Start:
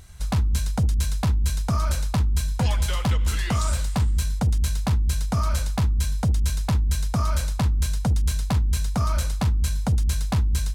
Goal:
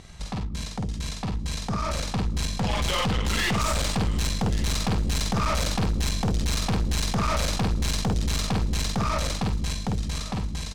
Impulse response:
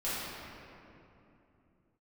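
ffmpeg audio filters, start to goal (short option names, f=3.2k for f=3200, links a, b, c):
-filter_complex "[0:a]lowpass=5.7k,bandreject=f=1.5k:w=6.7,asplit=2[a][b];[b]adelay=50,volume=-4dB[c];[a][c]amix=inputs=2:normalize=0,asplit=2[d][e];[e]acompressor=threshold=-27dB:ratio=6,volume=1dB[f];[d][f]amix=inputs=2:normalize=0,lowshelf=f=130:t=q:w=1.5:g=-8,alimiter=limit=-20.5dB:level=0:latency=1:release=36,dynaudnorm=f=690:g=7:m=12dB,aeval=exprs='(tanh(12.6*val(0)+0.4)-tanh(0.4))/12.6':c=same,aecho=1:1:1138:0.119"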